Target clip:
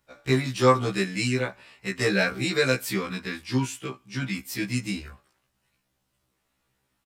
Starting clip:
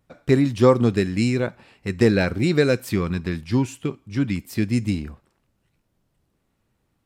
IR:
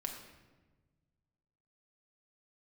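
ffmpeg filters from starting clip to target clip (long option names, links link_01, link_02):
-filter_complex "[0:a]tiltshelf=frequency=800:gain=-6,acrossover=split=310|590|1800[link_01][link_02][link_03][link_04];[link_02]asoftclip=type=hard:threshold=-25.5dB[link_05];[link_03]asplit=2[link_06][link_07];[link_07]adelay=26,volume=-4dB[link_08];[link_06][link_08]amix=inputs=2:normalize=0[link_09];[link_01][link_05][link_09][link_04]amix=inputs=4:normalize=0,afftfilt=real='re*1.73*eq(mod(b,3),0)':imag='im*1.73*eq(mod(b,3),0)':win_size=2048:overlap=0.75"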